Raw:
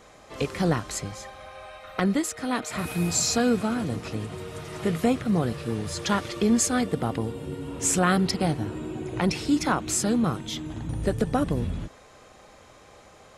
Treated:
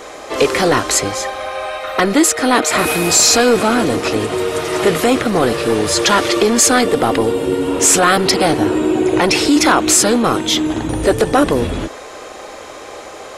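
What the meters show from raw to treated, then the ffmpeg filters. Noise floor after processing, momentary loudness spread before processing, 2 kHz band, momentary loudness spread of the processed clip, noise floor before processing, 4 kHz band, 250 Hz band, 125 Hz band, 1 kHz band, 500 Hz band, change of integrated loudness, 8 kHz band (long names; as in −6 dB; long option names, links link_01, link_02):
−33 dBFS, 14 LU, +15.5 dB, 15 LU, −52 dBFS, +16.5 dB, +9.5 dB, +3.5 dB, +14.5 dB, +15.0 dB, +12.5 dB, +14.5 dB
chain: -af "apsyclip=24.5dB,lowshelf=frequency=240:width_type=q:width=1.5:gain=-10,volume=-6dB"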